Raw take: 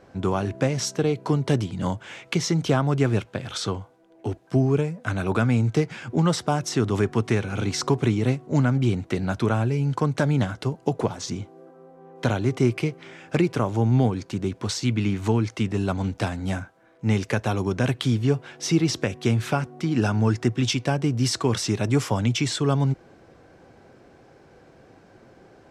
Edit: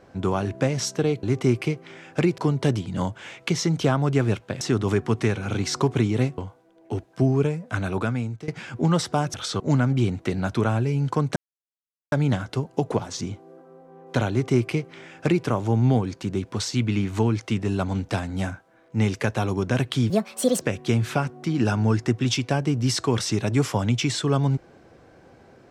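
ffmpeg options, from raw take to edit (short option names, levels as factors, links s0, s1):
-filter_complex "[0:a]asplit=11[s0][s1][s2][s3][s4][s5][s6][s7][s8][s9][s10];[s0]atrim=end=1.232[s11];[s1]atrim=start=12.388:end=13.542[s12];[s2]atrim=start=1.228:end=3.462[s13];[s3]atrim=start=6.678:end=8.452[s14];[s4]atrim=start=3.718:end=5.82,asetpts=PTS-STARTPTS,afade=t=out:st=1.432:d=0.67:silence=0.105925[s15];[s5]atrim=start=5.82:end=6.682,asetpts=PTS-STARTPTS,afade=t=in:d=0.004:c=hsin:silence=0.105925[s16];[s6]atrim=start=3.458:end=3.722[s17];[s7]atrim=start=8.448:end=10.21,asetpts=PTS-STARTPTS,afade=t=out:st=1.758:d=0.004:c=hsin,apad=pad_dur=0.76[s18];[s8]atrim=start=10.21:end=18.194,asetpts=PTS-STARTPTS,afade=t=in:d=0.004:c=hsin[s19];[s9]atrim=start=18.19:end=18.98,asetpts=PTS-STARTPTS,asetrate=67914,aresample=44100[s20];[s10]atrim=start=18.976[s21];[s11][s12]acrossfade=d=0.004:c1=hsin:c2=hsin[s22];[s22][s13]acrossfade=d=0.004:c1=hsin:c2=hsin[s23];[s23][s14]acrossfade=d=0.004:c1=hsin:c2=hsin[s24];[s15][s16]concat=n=2:v=0:a=1[s25];[s24][s25]acrossfade=d=0.004:c1=hsin:c2=hsin[s26];[s26][s17]acrossfade=d=0.004:c1=hsin:c2=hsin[s27];[s18][s19]concat=n=2:v=0:a=1[s28];[s27][s28]acrossfade=d=0.004:c1=hsin:c2=hsin[s29];[s29][s20]acrossfade=d=0.004:c1=hsin:c2=hsin[s30];[s30][s21]acrossfade=d=0.004:c1=hsin:c2=hsin"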